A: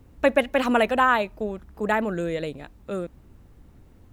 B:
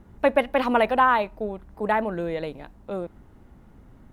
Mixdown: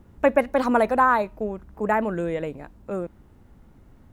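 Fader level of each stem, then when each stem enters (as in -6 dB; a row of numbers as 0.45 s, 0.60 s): -5.0 dB, -3.5 dB; 0.00 s, 0.00 s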